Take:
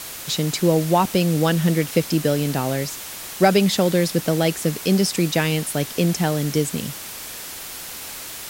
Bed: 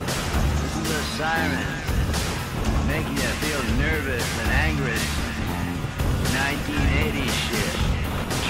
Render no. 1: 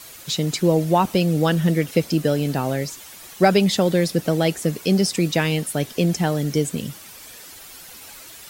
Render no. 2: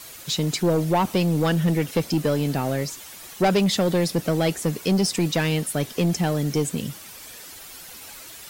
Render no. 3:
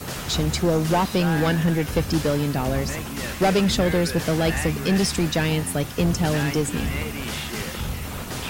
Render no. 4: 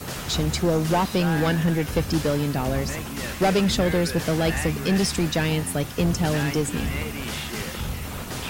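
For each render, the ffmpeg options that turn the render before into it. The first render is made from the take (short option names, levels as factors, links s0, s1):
-af "afftdn=nr=10:nf=-35"
-af "acrusher=bits=8:mode=log:mix=0:aa=0.000001,asoftclip=type=tanh:threshold=0.2"
-filter_complex "[1:a]volume=0.501[s0];[0:a][s0]amix=inputs=2:normalize=0"
-af "volume=0.891"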